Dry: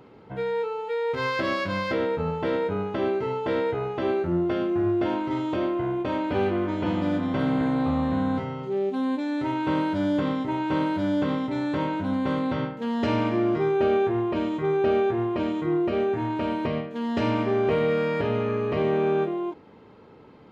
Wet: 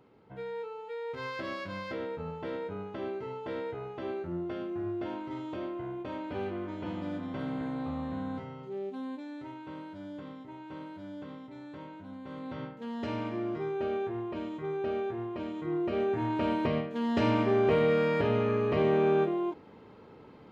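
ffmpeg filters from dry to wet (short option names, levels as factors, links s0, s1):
-af "volume=1.88,afade=t=out:st=8.86:d=0.8:silence=0.421697,afade=t=in:st=12.26:d=0.43:silence=0.398107,afade=t=in:st=15.52:d=0.95:silence=0.375837"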